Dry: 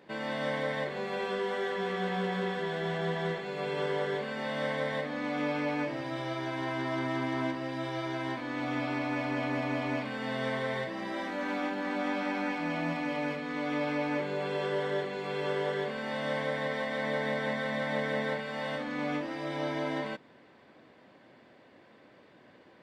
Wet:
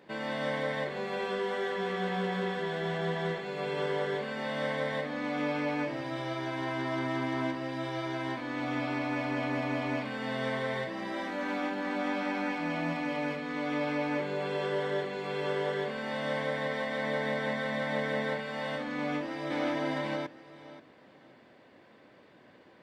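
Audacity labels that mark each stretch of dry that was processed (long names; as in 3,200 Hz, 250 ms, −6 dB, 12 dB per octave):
18.970000	19.730000	delay throw 530 ms, feedback 20%, level −2 dB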